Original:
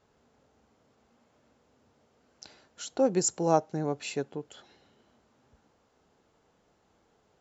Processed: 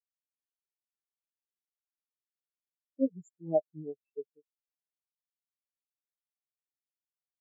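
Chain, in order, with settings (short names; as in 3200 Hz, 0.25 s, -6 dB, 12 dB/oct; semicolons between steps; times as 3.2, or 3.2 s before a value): comb 6.8 ms, depth 75%; spectral expander 4:1; gain -6 dB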